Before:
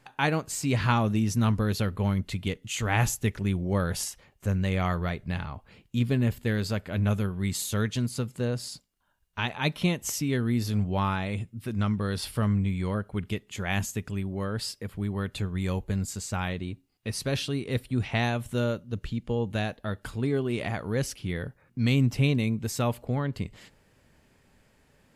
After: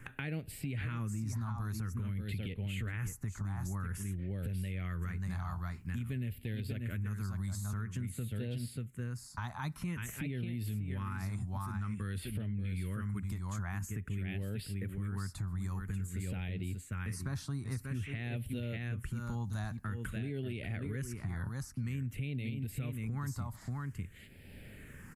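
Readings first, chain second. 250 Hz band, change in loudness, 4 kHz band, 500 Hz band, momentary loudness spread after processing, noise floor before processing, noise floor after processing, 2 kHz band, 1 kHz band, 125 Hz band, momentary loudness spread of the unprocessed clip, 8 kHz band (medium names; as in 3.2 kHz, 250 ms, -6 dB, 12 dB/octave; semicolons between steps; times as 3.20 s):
-11.5 dB, -10.0 dB, -16.0 dB, -16.5 dB, 3 LU, -64 dBFS, -53 dBFS, -11.5 dB, -14.0 dB, -7.5 dB, 9 LU, -12.5 dB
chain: peaking EQ 89 Hz +5 dB 0.53 oct; delay 587 ms -7.5 dB; phase shifter stages 4, 0.5 Hz, lowest notch 460–1100 Hz; compression, threshold -28 dBFS, peak gain reduction 10.5 dB; peak limiter -25 dBFS, peak gain reduction 7.5 dB; three bands compressed up and down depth 70%; trim -4.5 dB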